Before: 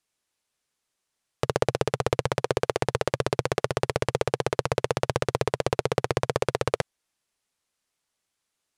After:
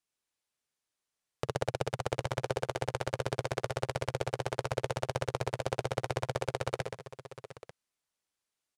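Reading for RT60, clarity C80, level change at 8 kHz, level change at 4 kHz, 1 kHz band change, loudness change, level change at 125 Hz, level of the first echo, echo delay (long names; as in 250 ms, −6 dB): no reverb audible, no reverb audible, −7.5 dB, −7.0 dB, −7.0 dB, −8.0 dB, −6.0 dB, −12.5 dB, 54 ms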